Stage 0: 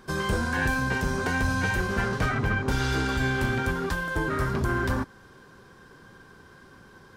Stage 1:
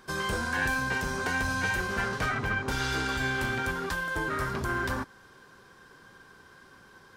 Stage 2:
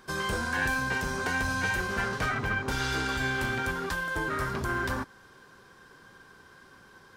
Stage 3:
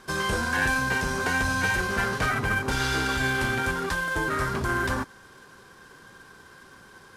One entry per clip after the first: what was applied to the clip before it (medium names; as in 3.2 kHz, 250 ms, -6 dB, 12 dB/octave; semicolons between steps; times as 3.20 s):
bass shelf 500 Hz -8 dB
short-mantissa float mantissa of 6-bit
CVSD coder 64 kbps; trim +4 dB